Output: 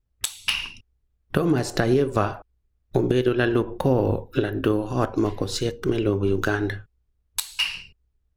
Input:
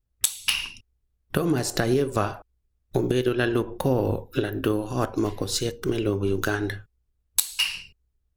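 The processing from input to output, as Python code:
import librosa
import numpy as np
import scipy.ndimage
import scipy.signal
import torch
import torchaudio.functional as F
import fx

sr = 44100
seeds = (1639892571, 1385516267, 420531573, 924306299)

y = fx.high_shelf(x, sr, hz=5700.0, db=-11.5)
y = F.gain(torch.from_numpy(y), 2.5).numpy()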